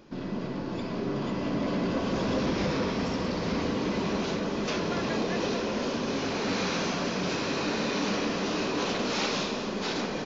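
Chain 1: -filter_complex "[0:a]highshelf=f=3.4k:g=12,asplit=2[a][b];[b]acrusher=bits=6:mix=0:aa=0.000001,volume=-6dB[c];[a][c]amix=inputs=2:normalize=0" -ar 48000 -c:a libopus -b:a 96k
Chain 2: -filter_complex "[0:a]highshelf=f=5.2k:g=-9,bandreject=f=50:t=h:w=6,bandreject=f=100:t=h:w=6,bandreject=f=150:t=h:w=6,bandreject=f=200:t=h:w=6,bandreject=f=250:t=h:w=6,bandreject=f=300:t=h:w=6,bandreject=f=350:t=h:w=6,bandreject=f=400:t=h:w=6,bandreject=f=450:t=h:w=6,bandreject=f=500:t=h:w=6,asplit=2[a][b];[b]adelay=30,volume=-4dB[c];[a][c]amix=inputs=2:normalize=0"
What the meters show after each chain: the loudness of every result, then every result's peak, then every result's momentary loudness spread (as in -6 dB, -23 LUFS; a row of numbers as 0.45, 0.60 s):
-23.5, -29.5 LUFS; -10.5, -16.5 dBFS; 6, 3 LU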